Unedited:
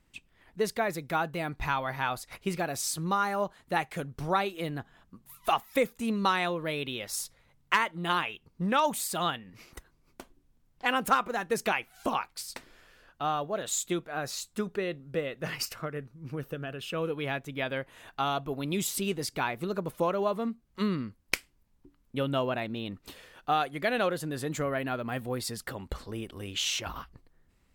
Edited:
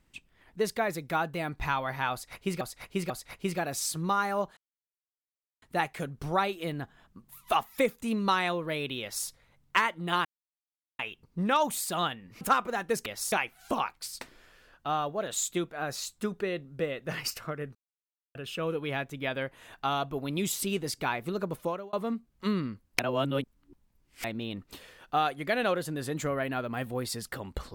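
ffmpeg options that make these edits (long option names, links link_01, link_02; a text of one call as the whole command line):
ffmpeg -i in.wav -filter_complex "[0:a]asplit=13[link_01][link_02][link_03][link_04][link_05][link_06][link_07][link_08][link_09][link_10][link_11][link_12][link_13];[link_01]atrim=end=2.612[link_14];[link_02]atrim=start=2.118:end=2.612[link_15];[link_03]atrim=start=2.118:end=3.59,asetpts=PTS-STARTPTS,afade=type=out:start_time=1.468:duration=0.004:curve=hsin,apad=pad_dur=1.05[link_16];[link_04]atrim=start=3.59:end=8.22,asetpts=PTS-STARTPTS,afade=type=in:duration=0.004:curve=hsin,afade=type=out:start_time=4.626:duration=0.004:curve=hsin,apad=pad_dur=0.74[link_17];[link_05]atrim=start=8.22:end=9.642,asetpts=PTS-STARTPTS,afade=type=in:duration=0.004:curve=hsin[link_18];[link_06]atrim=start=11.018:end=11.672[link_19];[link_07]atrim=start=6.978:end=7.242[link_20];[link_08]atrim=start=11.668:end=16.1,asetpts=PTS-STARTPTS,afade=type=out:start_time=4.428:duration=0.004:curve=hsin[link_21];[link_09]atrim=start=16.1:end=16.7,asetpts=PTS-STARTPTS,volume=0[link_22];[link_10]atrim=start=16.7:end=20.28,asetpts=PTS-STARTPTS,afade=type=in:duration=0.004:curve=hsin,afade=type=out:start_time=3.2:duration=0.38[link_23];[link_11]atrim=start=20.28:end=21.342,asetpts=PTS-STARTPTS,afade=type=in:duration=0.004:curve=hsin[link_24];[link_12]atrim=start=21.338:end=22.592,asetpts=PTS-STARTPTS,areverse[link_25];[link_13]atrim=start=22.588[link_26];[link_14][link_15]acrossfade=duration=0.004:curve1=hsin:curve2=hsin[link_27];[link_16][link_17][link_18]concat=n=3:v=0:a=1[link_28];[link_27][link_28]acrossfade=duration=0.004:curve1=hsin:curve2=hsin[link_29];[link_29][link_19]acrossfade=duration=0.004:curve1=hsin:curve2=hsin[link_30];[link_30][link_20]acrossfade=duration=0.004:curve1=hsin:curve2=hsin[link_31];[link_21][link_22][link_23][link_24]concat=n=4:v=0:a=1[link_32];[link_31][link_32]acrossfade=duration=0.004:curve1=hsin:curve2=hsin[link_33];[link_33][link_25]acrossfade=duration=0.004:curve1=hsin:curve2=hsin[link_34];[link_34][link_26]acrossfade=duration=0.004:curve1=hsin:curve2=hsin" out.wav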